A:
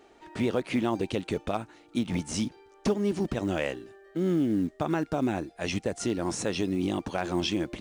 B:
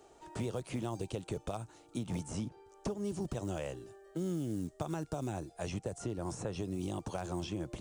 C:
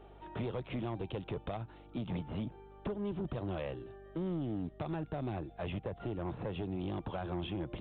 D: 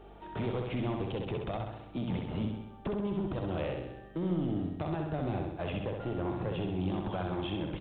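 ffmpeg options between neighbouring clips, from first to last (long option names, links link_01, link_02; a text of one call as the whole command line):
ffmpeg -i in.wav -filter_complex "[0:a]equalizer=frequency=125:width_type=o:width=1:gain=4,equalizer=frequency=250:width_type=o:width=1:gain=-8,equalizer=frequency=2000:width_type=o:width=1:gain=-10,equalizer=frequency=4000:width_type=o:width=1:gain=-4,equalizer=frequency=8000:width_type=o:width=1:gain=7,acrossover=split=160|2700[link_01][link_02][link_03];[link_01]acompressor=threshold=-41dB:ratio=4[link_04];[link_02]acompressor=threshold=-37dB:ratio=4[link_05];[link_03]acompressor=threshold=-52dB:ratio=4[link_06];[link_04][link_05][link_06]amix=inputs=3:normalize=0" out.wav
ffmpeg -i in.wav -af "aeval=exprs='val(0)+0.00112*(sin(2*PI*50*n/s)+sin(2*PI*2*50*n/s)/2+sin(2*PI*3*50*n/s)/3+sin(2*PI*4*50*n/s)/4+sin(2*PI*5*50*n/s)/5)':channel_layout=same,aresample=8000,asoftclip=type=tanh:threshold=-33dB,aresample=44100,volume=2.5dB" out.wav
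ffmpeg -i in.wav -af "aecho=1:1:65|130|195|260|325|390|455|520:0.631|0.372|0.22|0.13|0.0765|0.0451|0.0266|0.0157,volume=2.5dB" out.wav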